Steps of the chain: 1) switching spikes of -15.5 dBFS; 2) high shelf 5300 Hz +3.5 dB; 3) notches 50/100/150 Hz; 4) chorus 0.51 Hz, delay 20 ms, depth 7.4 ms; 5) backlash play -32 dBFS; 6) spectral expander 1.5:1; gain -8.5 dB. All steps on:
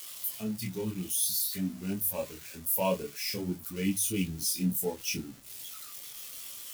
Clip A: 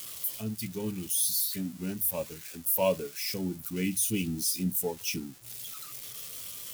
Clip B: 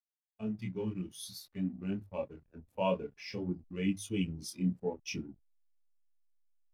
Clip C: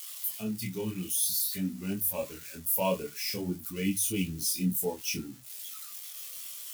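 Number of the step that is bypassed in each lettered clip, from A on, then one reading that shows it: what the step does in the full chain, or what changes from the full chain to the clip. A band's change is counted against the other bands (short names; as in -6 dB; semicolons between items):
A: 4, 500 Hz band +2.0 dB; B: 1, crest factor change +2.0 dB; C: 5, distortion -16 dB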